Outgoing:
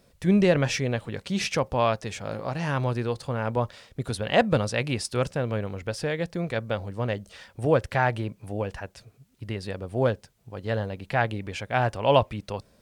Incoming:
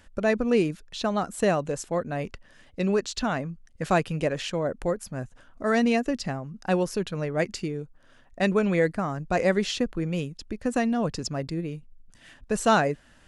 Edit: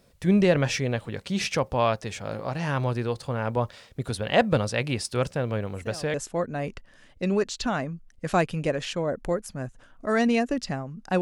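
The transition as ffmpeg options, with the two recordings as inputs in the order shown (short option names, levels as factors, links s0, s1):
-filter_complex "[1:a]asplit=2[s0][s1];[0:a]apad=whole_dur=11.21,atrim=end=11.21,atrim=end=6.142[s2];[s1]atrim=start=1.708:end=6.78[s3];[s0]atrim=start=1.29:end=1.71,asetpts=PTS-STARTPTS,volume=0.133,afade=t=in:d=0.004:c=hsin,afade=t=out:st=0.416:d=0.004:c=hsin,adelay=5720[s4];[s2][s3]acrossfade=d=0.004:c1=hsin:c2=hsin[s5];[s5][s4]amix=inputs=2:normalize=0"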